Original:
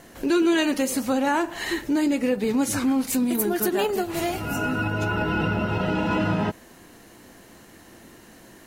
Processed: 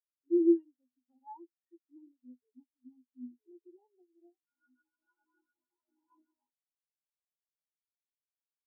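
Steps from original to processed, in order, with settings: rippled Chebyshev high-pass 240 Hz, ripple 9 dB; high shelf 2600 Hz +7 dB; spectral expander 4:1; gain -2.5 dB

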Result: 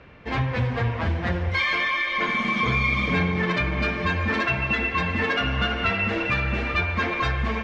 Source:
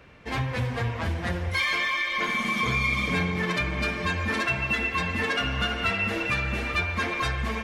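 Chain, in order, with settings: air absorption 160 m; gain +4 dB

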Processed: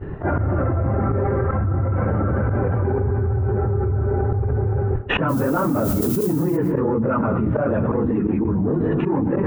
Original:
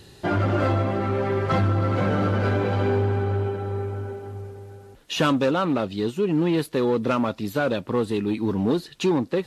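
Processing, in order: phase scrambler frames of 50 ms; notches 60/120/180/240/300 Hz; expander -37 dBFS; inverse Chebyshev low-pass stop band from 4300 Hz, stop band 50 dB; low shelf 120 Hz +11.5 dB; auto swell 0.126 s; 5.28–6.56 added noise violet -41 dBFS; on a send at -16.5 dB: reverb RT60 0.75 s, pre-delay 0.107 s; on the sum: fast leveller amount 100%; gain -8.5 dB

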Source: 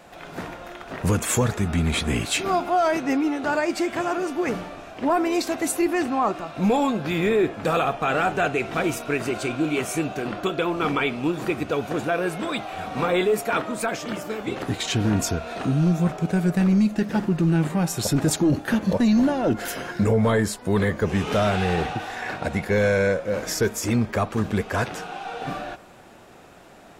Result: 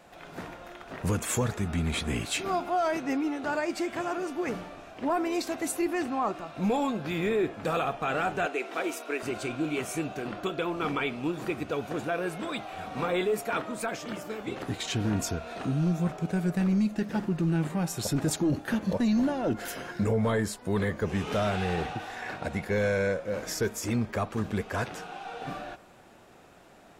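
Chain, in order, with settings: 8.46–9.23 HPF 290 Hz 24 dB/oct; gain -6.5 dB

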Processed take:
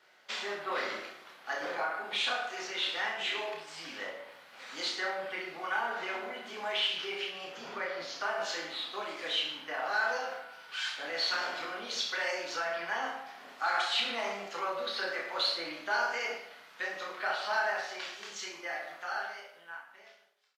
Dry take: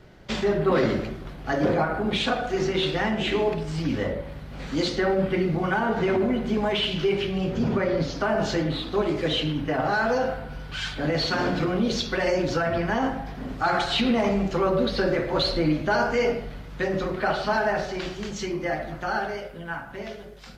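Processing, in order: ending faded out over 1.76 s; HPF 970 Hz 12 dB/oct; reverse bouncing-ball echo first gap 30 ms, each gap 1.15×, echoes 5; gain -5.5 dB

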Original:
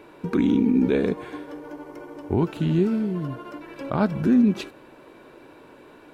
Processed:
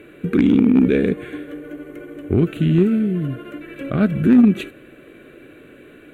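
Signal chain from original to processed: fixed phaser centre 2200 Hz, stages 4; added harmonics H 3 -17 dB, 5 -24 dB, 7 -42 dB, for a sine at -11 dBFS; gain +8.5 dB

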